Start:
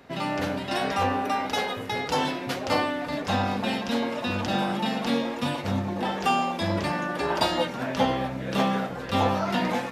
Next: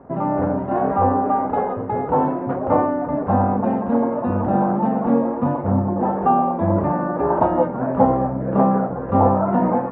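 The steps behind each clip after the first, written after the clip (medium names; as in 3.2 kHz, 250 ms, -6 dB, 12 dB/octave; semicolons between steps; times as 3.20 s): low-pass 1.1 kHz 24 dB/octave; trim +8.5 dB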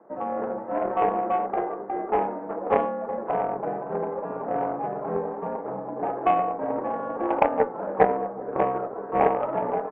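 mistuned SSB -64 Hz 360–2400 Hz; delay 372 ms -16 dB; Chebyshev shaper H 3 -14 dB, 6 -42 dB, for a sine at -4 dBFS; trim +1.5 dB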